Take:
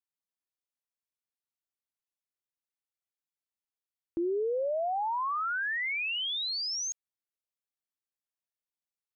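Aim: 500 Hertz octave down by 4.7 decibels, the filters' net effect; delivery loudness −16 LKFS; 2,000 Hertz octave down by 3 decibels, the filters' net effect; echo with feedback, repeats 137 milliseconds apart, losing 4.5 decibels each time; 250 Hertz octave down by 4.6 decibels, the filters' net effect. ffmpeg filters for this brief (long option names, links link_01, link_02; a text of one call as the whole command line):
ffmpeg -i in.wav -af "equalizer=frequency=250:width_type=o:gain=-4.5,equalizer=frequency=500:width_type=o:gain=-4.5,equalizer=frequency=2000:width_type=o:gain=-3.5,aecho=1:1:137|274|411|548|685|822|959|1096|1233:0.596|0.357|0.214|0.129|0.0772|0.0463|0.0278|0.0167|0.01,volume=15.5dB" out.wav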